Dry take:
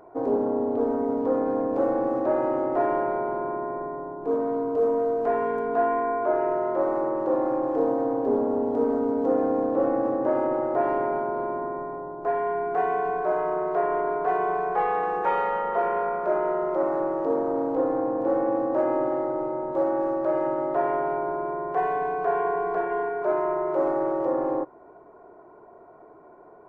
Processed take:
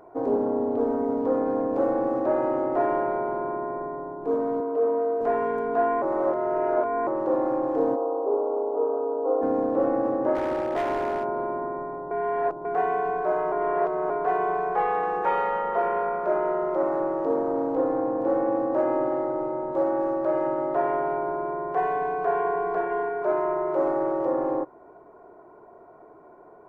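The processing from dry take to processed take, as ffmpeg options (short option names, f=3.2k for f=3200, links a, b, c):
-filter_complex "[0:a]asettb=1/sr,asplit=3[a][b][c];[a]atrim=end=4.604[d];[b]atrim=start=4.6:end=5.21,asetpts=PTS-STARTPTS,afade=t=in:d=0.004:c=qsin,afade=t=out:st=0.606:d=0.004:c=qsin,highpass=280,lowpass=2.6k[e];[c]atrim=start=5.206[f];[d][e]acrossfade=d=0.004:c1=hsin:c2=qsin[g];[g][f]acrossfade=d=0.004:c1=qsin:c2=hsin,asplit=3[h][i][j];[h]afade=t=out:st=7.95:d=0.02[k];[i]asuperpass=centerf=660:order=12:qfactor=0.66,afade=t=in:st=7.95:d=0.02,afade=t=out:st=9.41:d=0.02[l];[j]afade=t=in:st=9.41:d=0.02[m];[k][l][m]amix=inputs=3:normalize=0,asplit=3[n][o][p];[n]afade=t=out:st=10.34:d=0.02[q];[o]volume=22.5dB,asoftclip=hard,volume=-22.5dB,afade=t=in:st=10.34:d=0.02,afade=t=out:st=11.23:d=0.02[r];[p]afade=t=in:st=11.23:d=0.02[s];[q][r][s]amix=inputs=3:normalize=0,asplit=7[t][u][v][w][x][y][z];[t]atrim=end=6.022[aa];[u]atrim=start=6.018:end=7.072,asetpts=PTS-STARTPTS,areverse[ab];[v]atrim=start=7.068:end=12.112[ac];[w]atrim=start=12.108:end=12.652,asetpts=PTS-STARTPTS,areverse[ad];[x]atrim=start=12.648:end=13.522[ae];[y]atrim=start=13.518:end=14.102,asetpts=PTS-STARTPTS,areverse[af];[z]atrim=start=14.098[ag];[aa][ab]acrossfade=d=0.004:c1=hsin:c2=hsin[ah];[ah][ac]acrossfade=d=0.004:c1=hsin:c2=hsin[ai];[ai][ad]acrossfade=d=0.004:c1=hsin:c2=hsin[aj];[aj][ae]acrossfade=d=0.004:c1=hsin:c2=hsin[ak];[ak][af]acrossfade=d=0.004:c1=hsin:c2=hsin[al];[al][ag]acrossfade=d=0.004:c1=hsin:c2=hsin"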